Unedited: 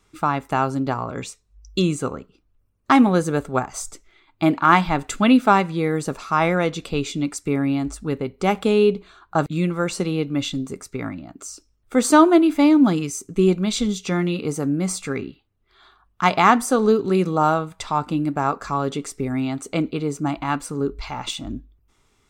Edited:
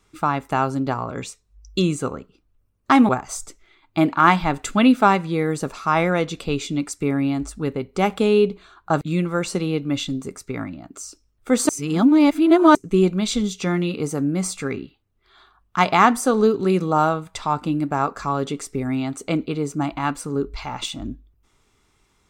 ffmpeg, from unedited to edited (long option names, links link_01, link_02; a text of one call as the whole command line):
ffmpeg -i in.wav -filter_complex "[0:a]asplit=4[link_01][link_02][link_03][link_04];[link_01]atrim=end=3.092[link_05];[link_02]atrim=start=3.538:end=12.142[link_06];[link_03]atrim=start=12.138:end=13.202,asetpts=PTS-STARTPTS,areverse[link_07];[link_04]atrim=start=13.198[link_08];[link_05][link_06]acrossfade=duration=0.004:curve1=hsin:curve2=hsin[link_09];[link_09][link_07]acrossfade=duration=0.004:curve1=hsin:curve2=hsin[link_10];[link_10][link_08]acrossfade=duration=0.004:curve1=hsin:curve2=hsin" out.wav